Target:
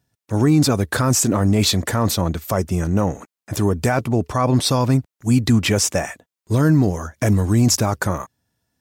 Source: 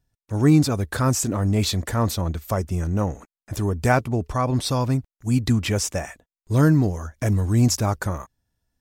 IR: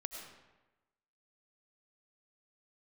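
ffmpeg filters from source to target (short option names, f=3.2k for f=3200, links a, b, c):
-af "highpass=110,alimiter=limit=-14dB:level=0:latency=1:release=13,volume=7dB"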